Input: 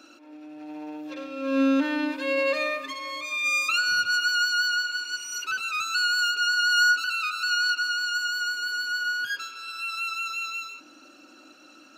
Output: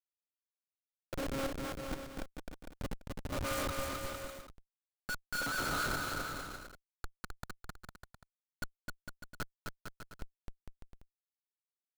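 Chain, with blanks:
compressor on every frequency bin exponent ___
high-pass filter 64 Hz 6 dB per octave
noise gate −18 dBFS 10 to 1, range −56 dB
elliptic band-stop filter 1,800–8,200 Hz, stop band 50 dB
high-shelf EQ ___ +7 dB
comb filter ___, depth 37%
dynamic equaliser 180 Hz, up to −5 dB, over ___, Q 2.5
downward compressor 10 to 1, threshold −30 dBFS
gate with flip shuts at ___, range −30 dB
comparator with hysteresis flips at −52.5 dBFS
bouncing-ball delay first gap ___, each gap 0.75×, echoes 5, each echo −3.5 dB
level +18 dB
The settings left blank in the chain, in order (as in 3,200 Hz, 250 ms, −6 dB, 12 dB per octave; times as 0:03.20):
0.4, 6,200 Hz, 1.5 ms, −55 dBFS, −29 dBFS, 260 ms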